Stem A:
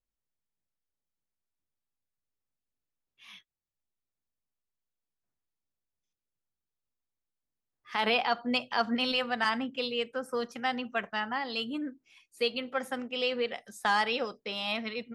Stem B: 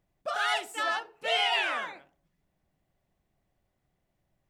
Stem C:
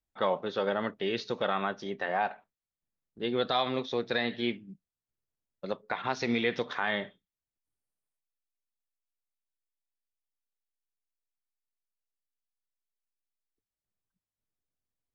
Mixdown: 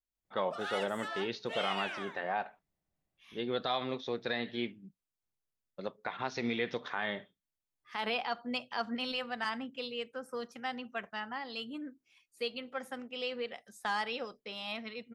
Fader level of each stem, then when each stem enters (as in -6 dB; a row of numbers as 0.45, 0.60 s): -7.0, -11.0, -5.0 dB; 0.00, 0.25, 0.15 s